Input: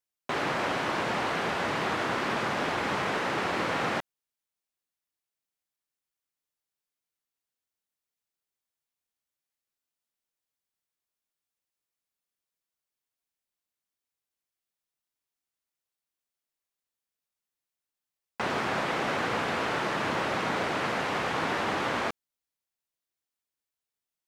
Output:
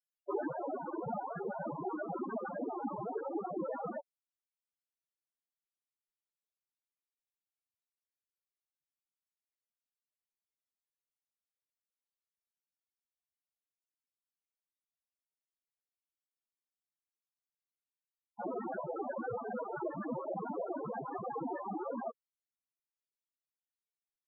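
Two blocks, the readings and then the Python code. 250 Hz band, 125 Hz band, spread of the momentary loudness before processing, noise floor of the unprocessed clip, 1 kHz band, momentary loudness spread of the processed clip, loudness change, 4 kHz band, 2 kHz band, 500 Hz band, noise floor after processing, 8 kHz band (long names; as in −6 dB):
−6.0 dB, −11.5 dB, 3 LU, below −85 dBFS, −11.0 dB, 2 LU, −10.5 dB, below −40 dB, −21.5 dB, −6.0 dB, below −85 dBFS, below −30 dB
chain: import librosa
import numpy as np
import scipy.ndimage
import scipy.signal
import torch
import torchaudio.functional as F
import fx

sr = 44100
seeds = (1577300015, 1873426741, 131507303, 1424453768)

y = fx.spec_topn(x, sr, count=4)
y = fx.rider(y, sr, range_db=10, speed_s=0.5)
y = fx.dereverb_blind(y, sr, rt60_s=1.5)
y = fx.peak_eq(y, sr, hz=1200.0, db=-6.5, octaves=1.2)
y = y * librosa.db_to_amplitude(4.5)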